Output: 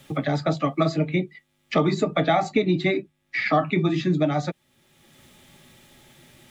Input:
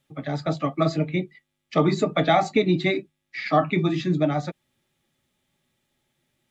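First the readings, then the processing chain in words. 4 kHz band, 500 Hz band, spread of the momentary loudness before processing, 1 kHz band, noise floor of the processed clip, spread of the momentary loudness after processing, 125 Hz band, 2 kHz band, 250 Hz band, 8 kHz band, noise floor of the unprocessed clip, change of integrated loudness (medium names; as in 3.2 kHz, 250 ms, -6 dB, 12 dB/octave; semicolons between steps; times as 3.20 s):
-0.5 dB, 0.0 dB, 11 LU, -0.5 dB, -70 dBFS, 7 LU, +0.5 dB, +1.5 dB, +0.5 dB, no reading, -79 dBFS, 0.0 dB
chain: three bands compressed up and down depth 70%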